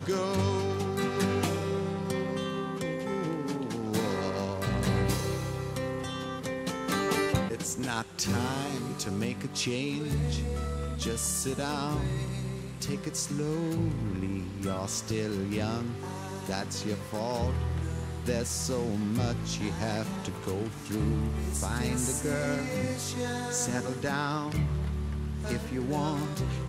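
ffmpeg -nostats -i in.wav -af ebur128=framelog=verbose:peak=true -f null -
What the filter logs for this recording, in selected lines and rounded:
Integrated loudness:
  I:         -31.4 LUFS
  Threshold: -41.4 LUFS
Loudness range:
  LRA:         2.0 LU
  Threshold: -51.5 LUFS
  LRA low:   -32.5 LUFS
  LRA high:  -30.6 LUFS
True peak:
  Peak:      -13.7 dBFS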